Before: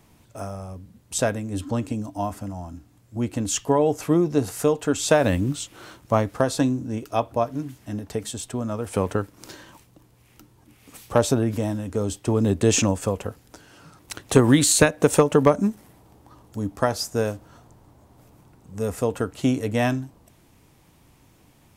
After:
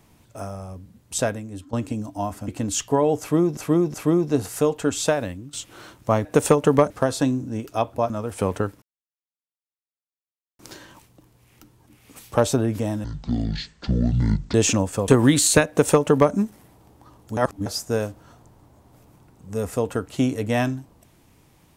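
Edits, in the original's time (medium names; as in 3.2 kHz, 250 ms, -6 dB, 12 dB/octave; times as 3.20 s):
1.20–1.73 s: fade out, to -15.5 dB
2.48–3.25 s: delete
3.97–4.34 s: loop, 3 plays
5.03–5.56 s: fade out quadratic, to -16.5 dB
7.48–8.65 s: delete
9.37 s: insert silence 1.77 s
11.82–12.63 s: speed 54%
13.17–14.33 s: delete
14.93–15.58 s: copy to 6.28 s
16.62–16.91 s: reverse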